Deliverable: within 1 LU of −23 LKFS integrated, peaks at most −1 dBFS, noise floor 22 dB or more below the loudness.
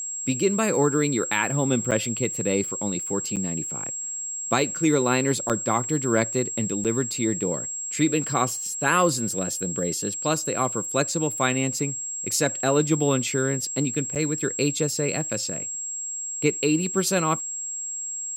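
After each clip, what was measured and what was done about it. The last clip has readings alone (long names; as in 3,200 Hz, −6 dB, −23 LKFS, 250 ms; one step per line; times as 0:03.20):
number of dropouts 5; longest dropout 7.4 ms; interfering tone 7,600 Hz; level of the tone −29 dBFS; integrated loudness −24.0 LKFS; sample peak −7.0 dBFS; target loudness −23.0 LKFS
→ repair the gap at 0:01.91/0:03.36/0:05.49/0:06.84/0:14.15, 7.4 ms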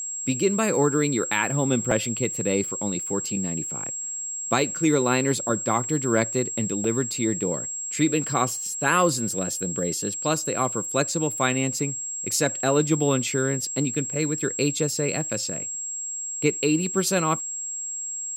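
number of dropouts 0; interfering tone 7,600 Hz; level of the tone −29 dBFS
→ notch filter 7,600 Hz, Q 30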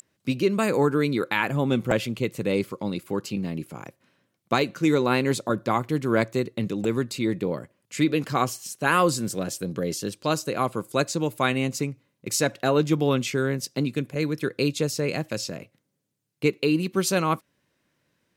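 interfering tone none found; integrated loudness −25.5 LKFS; sample peak −7.5 dBFS; target loudness −23.0 LKFS
→ level +2.5 dB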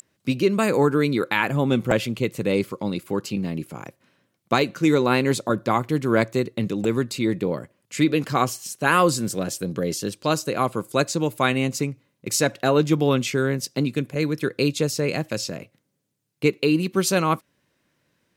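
integrated loudness −23.0 LKFS; sample peak −5.0 dBFS; background noise floor −73 dBFS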